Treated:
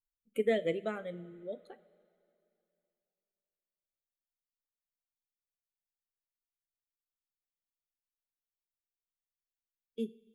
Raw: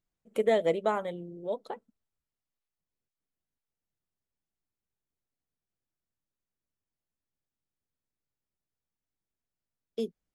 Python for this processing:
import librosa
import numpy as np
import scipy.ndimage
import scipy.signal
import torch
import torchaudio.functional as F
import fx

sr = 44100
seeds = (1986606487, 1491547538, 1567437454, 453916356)

y = fx.bin_expand(x, sr, power=1.5)
y = fx.fixed_phaser(y, sr, hz=2300.0, stages=4)
y = fx.rev_double_slope(y, sr, seeds[0], early_s=0.3, late_s=2.8, knee_db=-18, drr_db=12.0)